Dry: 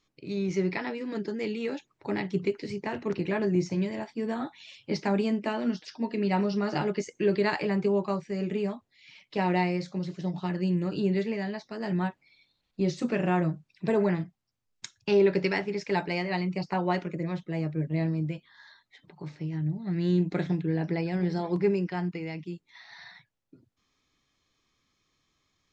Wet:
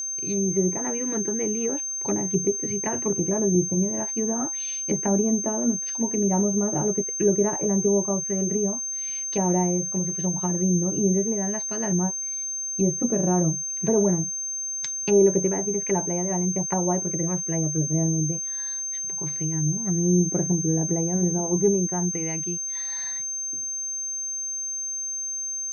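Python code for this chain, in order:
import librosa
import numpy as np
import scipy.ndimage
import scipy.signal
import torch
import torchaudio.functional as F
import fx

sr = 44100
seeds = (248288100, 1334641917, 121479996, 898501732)

y = fx.env_lowpass_down(x, sr, base_hz=710.0, full_db=-26.0)
y = y + 10.0 ** (-32.0 / 20.0) * np.sin(2.0 * np.pi * 6300.0 * np.arange(len(y)) / sr)
y = y * 10.0 ** (4.5 / 20.0)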